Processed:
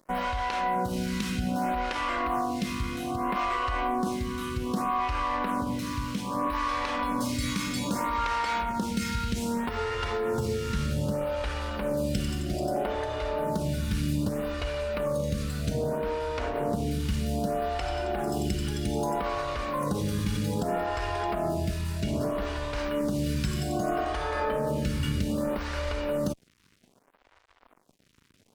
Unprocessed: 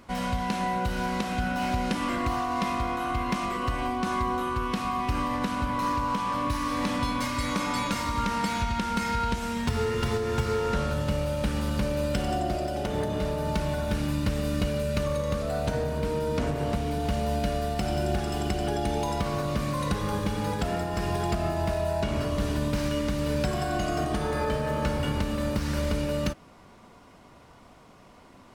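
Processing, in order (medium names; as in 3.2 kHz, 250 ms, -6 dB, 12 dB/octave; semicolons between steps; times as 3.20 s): in parallel at -2.5 dB: compressor with a negative ratio -32 dBFS; on the sum: crossover distortion -41.5 dBFS; lamp-driven phase shifter 0.63 Hz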